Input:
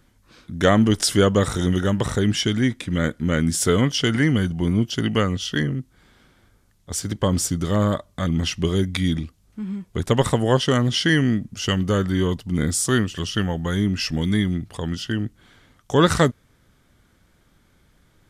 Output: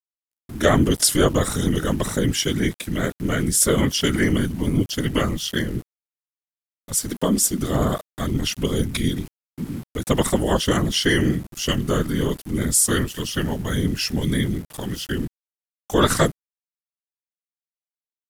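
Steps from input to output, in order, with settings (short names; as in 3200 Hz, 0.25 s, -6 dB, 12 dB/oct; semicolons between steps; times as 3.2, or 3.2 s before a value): whisperiser; 7.11–7.61 resonant low shelf 160 Hz -8 dB, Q 3; sample gate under -39 dBFS; expander -56 dBFS; bell 12000 Hz +12.5 dB 0.99 oct; gain -1 dB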